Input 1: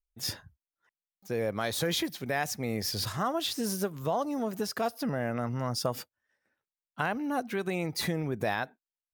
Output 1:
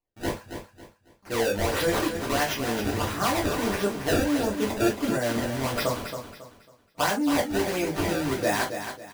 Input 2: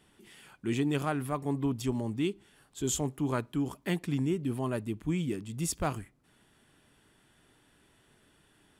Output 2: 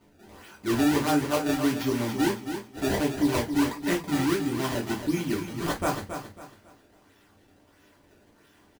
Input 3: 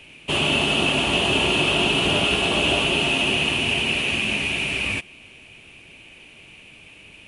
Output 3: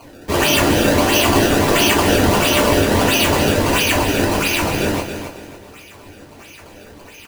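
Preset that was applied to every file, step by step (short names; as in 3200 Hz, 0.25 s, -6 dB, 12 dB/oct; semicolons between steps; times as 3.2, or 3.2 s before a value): low shelf 110 Hz -9.5 dB; decimation with a swept rate 24×, swing 160% 1.5 Hz; on a send: feedback echo 0.274 s, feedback 31%, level -8.5 dB; on the sum: non-linear reverb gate 80 ms falling, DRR -3 dB; gain +1 dB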